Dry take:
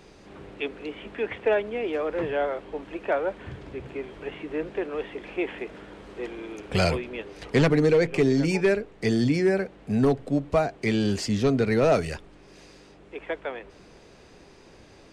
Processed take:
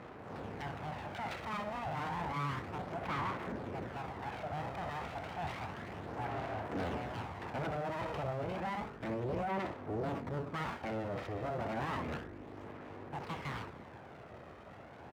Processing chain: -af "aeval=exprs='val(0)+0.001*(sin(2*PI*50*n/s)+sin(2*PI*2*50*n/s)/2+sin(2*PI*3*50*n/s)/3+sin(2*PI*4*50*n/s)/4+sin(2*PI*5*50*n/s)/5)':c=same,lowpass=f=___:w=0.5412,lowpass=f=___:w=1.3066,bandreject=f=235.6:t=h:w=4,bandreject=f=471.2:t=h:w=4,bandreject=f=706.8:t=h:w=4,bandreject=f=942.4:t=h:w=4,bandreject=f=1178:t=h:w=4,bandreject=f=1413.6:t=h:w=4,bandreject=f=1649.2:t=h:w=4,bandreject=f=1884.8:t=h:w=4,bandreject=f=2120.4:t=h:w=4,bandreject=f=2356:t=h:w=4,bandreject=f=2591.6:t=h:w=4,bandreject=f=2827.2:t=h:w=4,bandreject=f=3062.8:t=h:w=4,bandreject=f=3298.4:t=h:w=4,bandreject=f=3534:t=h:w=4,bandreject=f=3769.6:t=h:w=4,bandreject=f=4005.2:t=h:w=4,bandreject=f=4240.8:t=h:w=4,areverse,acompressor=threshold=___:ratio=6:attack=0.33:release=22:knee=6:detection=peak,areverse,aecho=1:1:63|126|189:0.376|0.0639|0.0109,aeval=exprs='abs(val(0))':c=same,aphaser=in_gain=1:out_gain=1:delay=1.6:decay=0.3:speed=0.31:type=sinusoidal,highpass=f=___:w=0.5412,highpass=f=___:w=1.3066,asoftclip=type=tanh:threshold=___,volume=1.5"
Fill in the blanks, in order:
1700, 1700, 0.02, 66, 66, 0.0316